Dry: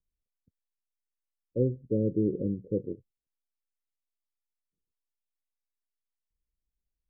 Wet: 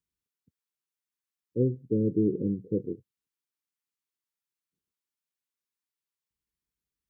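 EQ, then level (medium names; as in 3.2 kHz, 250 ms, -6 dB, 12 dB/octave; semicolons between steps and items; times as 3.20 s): high-pass 100 Hz 12 dB/octave; Butterworth band-stop 640 Hz, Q 1.7; +2.5 dB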